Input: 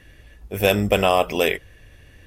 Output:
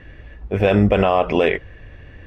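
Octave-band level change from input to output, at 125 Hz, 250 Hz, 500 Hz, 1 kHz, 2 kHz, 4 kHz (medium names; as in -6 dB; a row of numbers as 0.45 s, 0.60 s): +6.5 dB, +6.5 dB, +2.5 dB, +1.5 dB, -0.5 dB, -5.5 dB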